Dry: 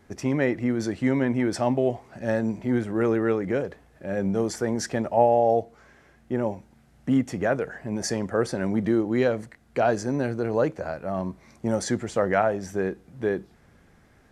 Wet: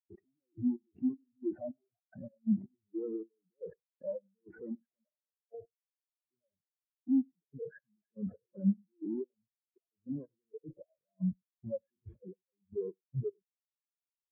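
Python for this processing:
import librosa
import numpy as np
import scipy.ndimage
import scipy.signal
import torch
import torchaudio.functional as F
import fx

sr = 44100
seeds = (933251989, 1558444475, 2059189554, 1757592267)

y = fx.spec_quant(x, sr, step_db=15)
y = fx.fuzz(y, sr, gain_db=48.0, gate_db=-44.0)
y = scipy.signal.sosfilt(scipy.signal.butter(4, 2700.0, 'lowpass', fs=sr, output='sos'), y)
y = fx.low_shelf(y, sr, hz=400.0, db=-3.0)
y = fx.level_steps(y, sr, step_db=15)
y = fx.env_lowpass_down(y, sr, base_hz=520.0, full_db=-20.0)
y = fx.over_compress(y, sr, threshold_db=-30.0, ratio=-0.5)
y = fx.step_gate(y, sr, bpm=158, pattern='xx....xx..xx...x', floor_db=-12.0, edge_ms=4.5)
y = y + 10.0 ** (-12.5 / 20.0) * np.pad(y, (int(99 * sr / 1000.0), 0))[:len(y)]
y = fx.spectral_expand(y, sr, expansion=4.0)
y = y * librosa.db_to_amplitude(-4.5)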